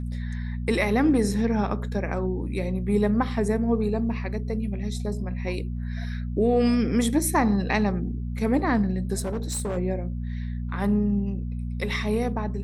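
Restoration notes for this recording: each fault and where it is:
hum 60 Hz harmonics 4 -30 dBFS
9.19–9.78 s: clipped -24.5 dBFS

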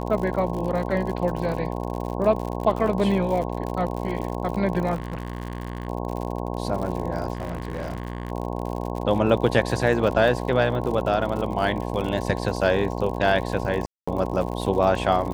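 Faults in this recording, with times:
buzz 60 Hz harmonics 18 -29 dBFS
crackle 68 per s -30 dBFS
4.94–5.88 s: clipped -25.5 dBFS
7.33–8.32 s: clipped -25 dBFS
13.86–14.07 s: dropout 215 ms

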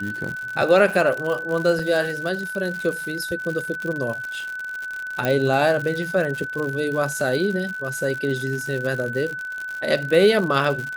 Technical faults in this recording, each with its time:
crackle 110 per s -27 dBFS
whine 1.5 kHz -28 dBFS
1.79 s: dropout 4.2 ms
5.25 s: pop -9 dBFS

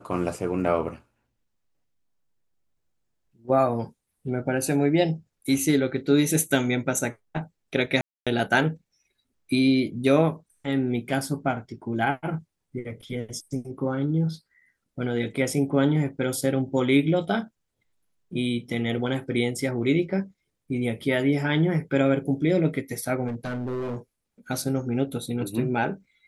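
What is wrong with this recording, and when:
8.01–8.27 s: dropout 256 ms
23.27–23.96 s: clipped -26 dBFS

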